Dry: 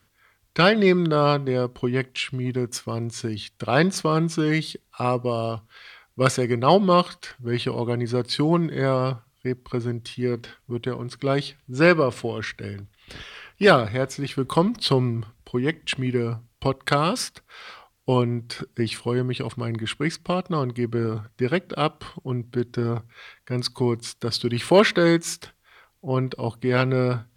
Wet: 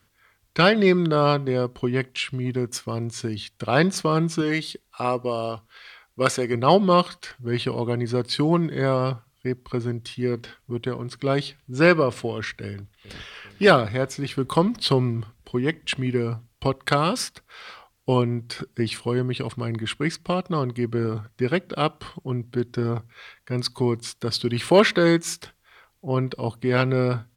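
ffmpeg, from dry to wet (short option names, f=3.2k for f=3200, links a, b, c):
-filter_complex "[0:a]asettb=1/sr,asplit=3[a][b][c];[a]atrim=end=4.414[d];[b]atrim=start=4.41:end=6.54,asetpts=PTS-STARTPTS,afade=t=in:d=0.004:c=qsin,afade=t=out:st=2.126:d=0.004:c=qsin,equalizer=f=130:t=o:w=1.5:g=-7[e];[c]atrim=start=6.536[f];[d][e]acrossfade=d=0.004:c1=hsin:c2=qsin[g];[g][f]acrossfade=d=0.004:c1=qsin:c2=hsin,asplit=2[h][i];[i]afade=t=in:st=12.64:d=0.01,afade=t=out:st=13.22:d=0.01,aecho=0:1:400|800|1200|1600|2000|2400|2800|3200|3600|4000|4400:0.177828|0.133371|0.100028|0.0750212|0.0562659|0.0421994|0.0316496|0.0237372|0.0178029|0.0133522|0.0100141[j];[h][j]amix=inputs=2:normalize=0"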